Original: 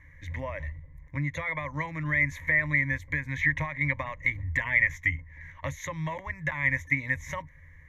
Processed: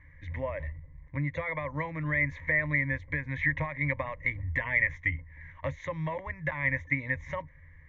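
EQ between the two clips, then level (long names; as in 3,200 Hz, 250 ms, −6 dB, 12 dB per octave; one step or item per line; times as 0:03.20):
high-shelf EQ 9,200 Hz −8 dB
dynamic equaliser 490 Hz, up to +6 dB, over −50 dBFS, Q 1.7
high-frequency loss of the air 190 metres
−1.0 dB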